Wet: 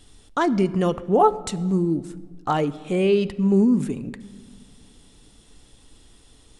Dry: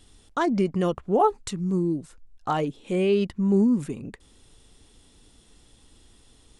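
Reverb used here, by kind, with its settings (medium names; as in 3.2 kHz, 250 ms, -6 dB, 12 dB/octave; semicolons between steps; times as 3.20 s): simulated room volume 2200 m³, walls mixed, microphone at 0.36 m; trim +3 dB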